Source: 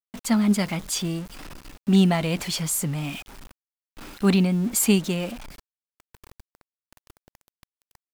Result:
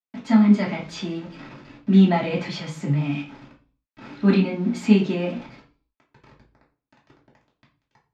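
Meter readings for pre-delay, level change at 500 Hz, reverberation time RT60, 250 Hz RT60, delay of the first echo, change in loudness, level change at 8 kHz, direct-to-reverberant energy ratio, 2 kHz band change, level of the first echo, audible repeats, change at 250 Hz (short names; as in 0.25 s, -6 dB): 3 ms, +2.0 dB, 0.40 s, 0.50 s, none, +2.0 dB, under -15 dB, -4.5 dB, +0.5 dB, none, none, +3.5 dB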